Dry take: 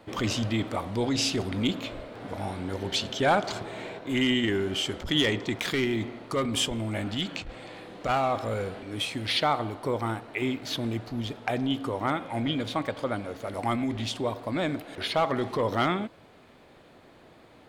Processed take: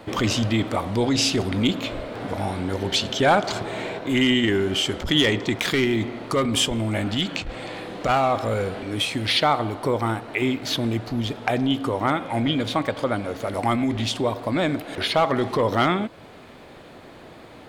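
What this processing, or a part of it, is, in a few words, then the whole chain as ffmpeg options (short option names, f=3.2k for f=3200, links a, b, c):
parallel compression: -filter_complex "[0:a]asplit=2[a][b];[b]acompressor=threshold=-38dB:ratio=6,volume=-0.5dB[c];[a][c]amix=inputs=2:normalize=0,volume=4dB"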